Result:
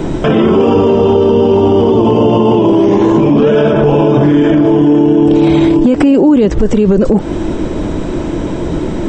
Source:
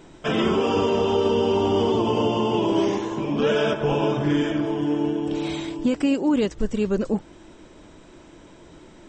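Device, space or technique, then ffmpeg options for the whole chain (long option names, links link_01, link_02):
mastering chain: -filter_complex "[0:a]equalizer=frequency=3600:width_type=o:width=2.4:gain=2,acrossover=split=280|3500[link_01][link_02][link_03];[link_01]acompressor=threshold=-32dB:ratio=4[link_04];[link_02]acompressor=threshold=-24dB:ratio=4[link_05];[link_03]acompressor=threshold=-48dB:ratio=4[link_06];[link_04][link_05][link_06]amix=inputs=3:normalize=0,acompressor=threshold=-28dB:ratio=2.5,tiltshelf=frequency=920:gain=7.5,asoftclip=type=hard:threshold=-16dB,alimiter=level_in=26dB:limit=-1dB:release=50:level=0:latency=1,volume=-1dB"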